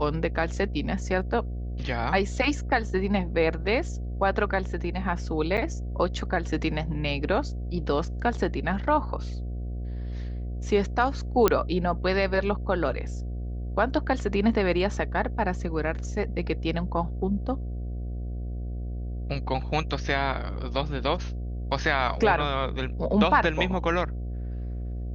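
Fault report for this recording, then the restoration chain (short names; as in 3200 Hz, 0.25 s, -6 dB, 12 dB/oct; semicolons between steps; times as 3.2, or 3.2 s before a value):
buzz 60 Hz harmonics 12 -32 dBFS
5.57–5.58 gap 7.9 ms
11.48 pop -6 dBFS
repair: de-click; de-hum 60 Hz, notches 12; interpolate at 5.57, 7.9 ms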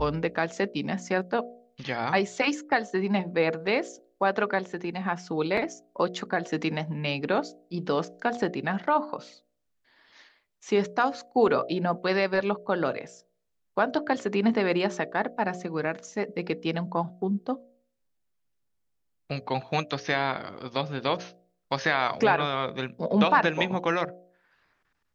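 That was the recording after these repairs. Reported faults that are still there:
none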